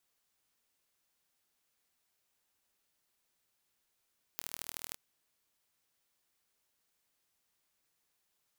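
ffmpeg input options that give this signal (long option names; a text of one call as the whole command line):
ffmpeg -f lavfi -i "aevalsrc='0.282*eq(mod(n,1111),0)*(0.5+0.5*eq(mod(n,3333),0))':duration=0.56:sample_rate=44100" out.wav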